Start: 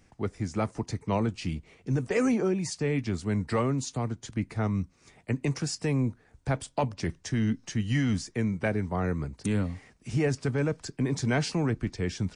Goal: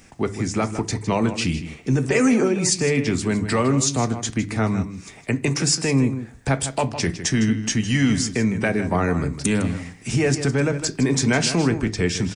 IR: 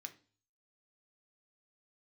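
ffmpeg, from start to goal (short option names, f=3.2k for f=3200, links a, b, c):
-filter_complex "[0:a]alimiter=limit=-22.5dB:level=0:latency=1:release=183,asplit=2[a][b];[b]adelay=157.4,volume=-11dB,highshelf=f=4k:g=-3.54[c];[a][c]amix=inputs=2:normalize=0,asplit=2[d][e];[1:a]atrim=start_sample=2205,highshelf=f=4.6k:g=7[f];[e][f]afir=irnorm=-1:irlink=0,volume=3.5dB[g];[d][g]amix=inputs=2:normalize=0,volume=8.5dB"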